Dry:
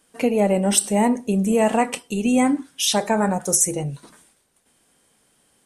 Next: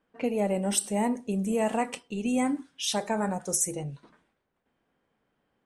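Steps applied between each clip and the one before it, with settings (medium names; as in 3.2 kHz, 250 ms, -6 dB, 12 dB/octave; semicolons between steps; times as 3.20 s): level-controlled noise filter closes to 1.9 kHz, open at -16 dBFS; trim -8.5 dB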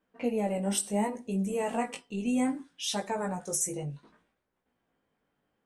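chorus 0.66 Hz, delay 15.5 ms, depth 5.1 ms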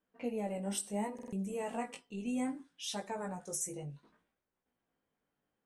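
buffer glitch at 1.14 s, samples 2048, times 3; trim -7.5 dB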